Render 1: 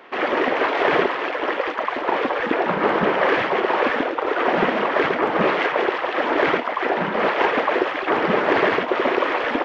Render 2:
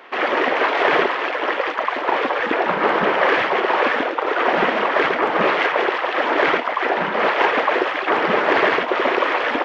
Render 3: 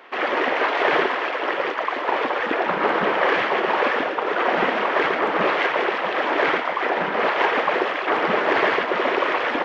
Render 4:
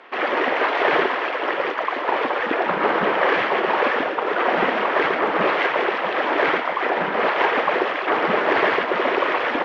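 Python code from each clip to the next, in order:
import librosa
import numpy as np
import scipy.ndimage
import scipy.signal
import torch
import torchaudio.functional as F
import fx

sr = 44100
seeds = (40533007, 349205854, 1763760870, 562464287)

y1 = fx.low_shelf(x, sr, hz=340.0, db=-9.0)
y1 = y1 * librosa.db_to_amplitude(3.5)
y2 = fx.echo_split(y1, sr, split_hz=700.0, low_ms=655, high_ms=119, feedback_pct=52, wet_db=-10.0)
y2 = y2 * librosa.db_to_amplitude(-3.0)
y3 = fx.air_absorb(y2, sr, metres=60.0)
y3 = y3 * librosa.db_to_amplitude(1.0)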